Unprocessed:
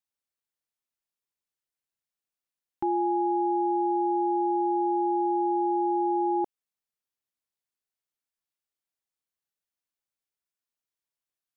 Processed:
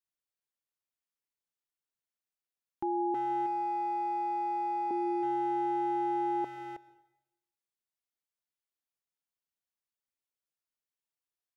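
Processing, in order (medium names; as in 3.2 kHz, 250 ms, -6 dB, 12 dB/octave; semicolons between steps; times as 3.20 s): 3.14–4.91 s: high-pass 520 Hz 12 dB/octave; speakerphone echo 320 ms, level -6 dB; reverberation RT60 0.90 s, pre-delay 103 ms, DRR 17 dB; trim -5.5 dB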